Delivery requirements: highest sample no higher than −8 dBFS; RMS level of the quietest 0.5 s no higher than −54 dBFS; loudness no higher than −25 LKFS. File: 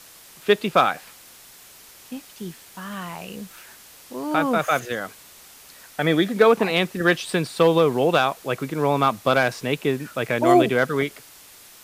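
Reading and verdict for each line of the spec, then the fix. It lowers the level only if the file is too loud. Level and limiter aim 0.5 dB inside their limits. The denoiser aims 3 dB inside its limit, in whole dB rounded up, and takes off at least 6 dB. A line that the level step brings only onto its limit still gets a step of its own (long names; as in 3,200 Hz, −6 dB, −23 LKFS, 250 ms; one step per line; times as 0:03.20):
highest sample −4.0 dBFS: out of spec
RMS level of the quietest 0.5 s −47 dBFS: out of spec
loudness −21.0 LKFS: out of spec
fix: broadband denoise 6 dB, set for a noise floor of −47 dBFS
level −4.5 dB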